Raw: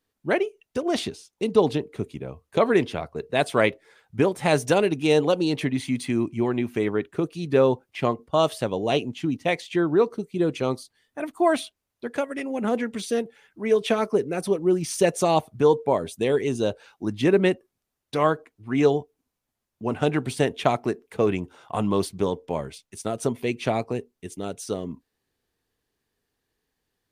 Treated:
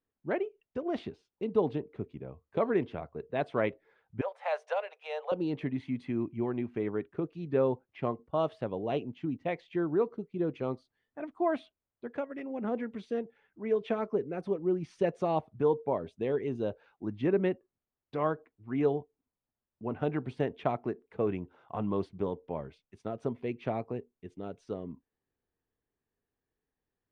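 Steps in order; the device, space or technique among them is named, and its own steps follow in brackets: 4.21–5.32 s: steep high-pass 510 Hz 72 dB/octave; phone in a pocket (low-pass 3 kHz 12 dB/octave; treble shelf 2.2 kHz -9.5 dB); trim -8 dB

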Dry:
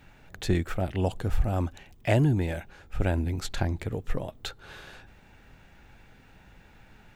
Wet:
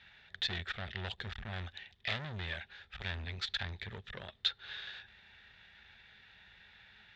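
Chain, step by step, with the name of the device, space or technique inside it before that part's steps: scooped metal amplifier (valve stage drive 30 dB, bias 0.7; cabinet simulation 86–4500 Hz, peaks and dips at 130 Hz -4 dB, 220 Hz +9 dB, 380 Hz +10 dB, 1.1 kHz -3 dB, 1.8 kHz +8 dB, 3.6 kHz +10 dB; amplifier tone stack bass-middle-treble 10-0-10); trim +5.5 dB

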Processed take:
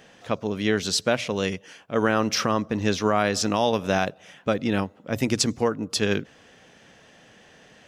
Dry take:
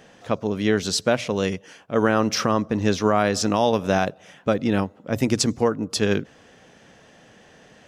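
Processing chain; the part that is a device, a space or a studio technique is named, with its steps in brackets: presence and air boost (peaking EQ 2.8 kHz +4 dB 1.9 oct; treble shelf 10 kHz +4 dB); trim -3 dB

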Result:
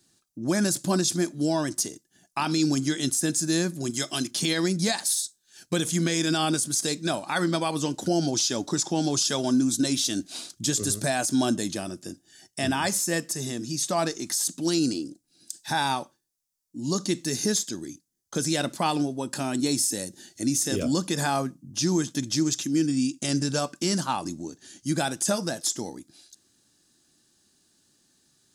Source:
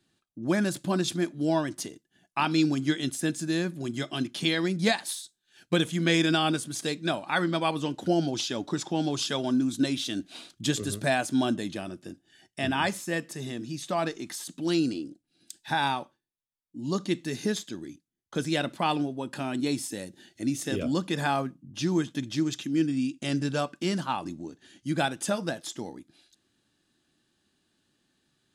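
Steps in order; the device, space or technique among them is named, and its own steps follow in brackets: 3.90–4.31 s: tilt EQ +1.5 dB/octave; over-bright horn tweeter (resonant high shelf 4.2 kHz +9.5 dB, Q 1.5; peak limiter -17.5 dBFS, peak gain reduction 9.5 dB); trim +3 dB

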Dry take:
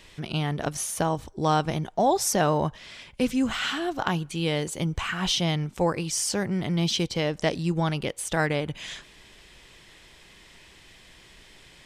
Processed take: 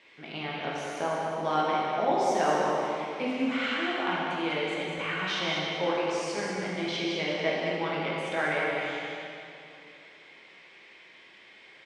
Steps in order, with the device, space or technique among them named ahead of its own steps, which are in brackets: station announcement (band-pass 310–3500 Hz; peaking EQ 2.2 kHz +9 dB 0.23 oct; loudspeakers at several distances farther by 27 m -11 dB, 68 m -6 dB; reverberation RT60 2.7 s, pre-delay 8 ms, DRR -4.5 dB); trim -7.5 dB

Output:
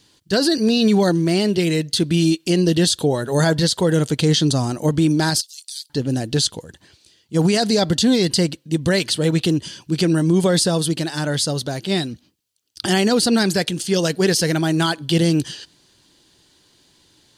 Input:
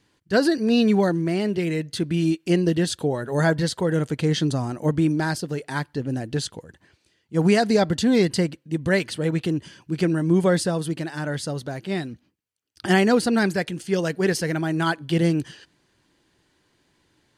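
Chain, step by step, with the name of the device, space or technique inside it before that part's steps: over-bright horn tweeter (resonant high shelf 2.8 kHz +7.5 dB, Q 1.5; peak limiter -14 dBFS, peak gain reduction 8.5 dB); 5.41–5.90 s: inverse Chebyshev high-pass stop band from 960 Hz, stop band 70 dB; trim +5.5 dB

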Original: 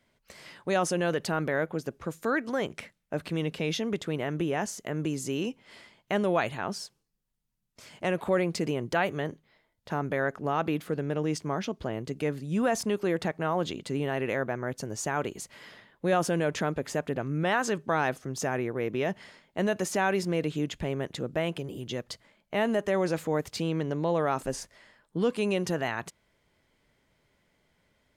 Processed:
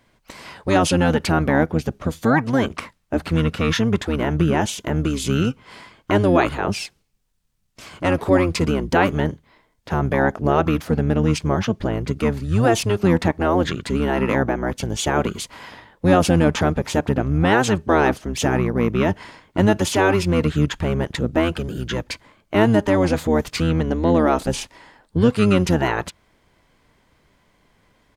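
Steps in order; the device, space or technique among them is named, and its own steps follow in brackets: octave pedal (harmony voices -12 st 0 dB); trim +7.5 dB

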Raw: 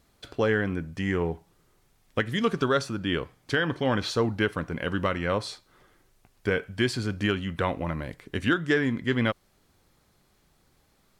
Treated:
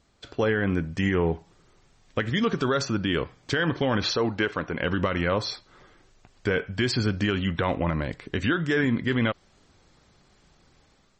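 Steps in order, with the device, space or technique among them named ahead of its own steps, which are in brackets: 4.16–4.80 s: tone controls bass -8 dB, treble -2 dB; low-bitrate web radio (level rider gain up to 6 dB; peak limiter -14 dBFS, peak gain reduction 7.5 dB; MP3 32 kbps 44.1 kHz)

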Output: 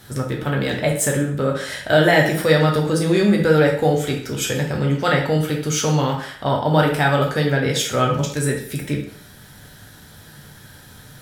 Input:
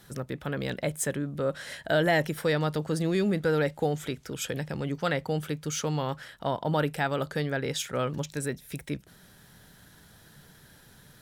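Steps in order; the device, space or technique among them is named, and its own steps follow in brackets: bathroom (reverberation RT60 0.60 s, pre-delay 4 ms, DRR -0.5 dB); trim +7.5 dB

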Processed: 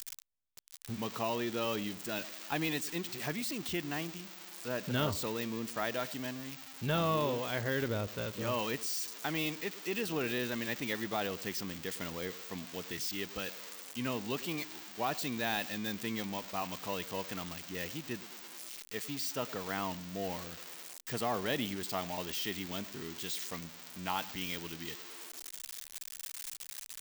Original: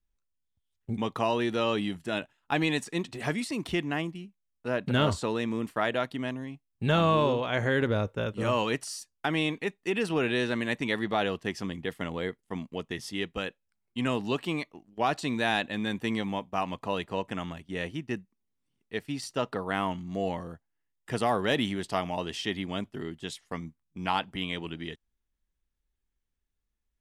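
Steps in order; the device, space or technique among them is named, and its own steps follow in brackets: band-passed feedback delay 106 ms, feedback 45%, band-pass 300 Hz, level -16.5 dB; budget class-D amplifier (dead-time distortion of 0.05 ms; zero-crossing glitches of -19.5 dBFS); trim -7.5 dB

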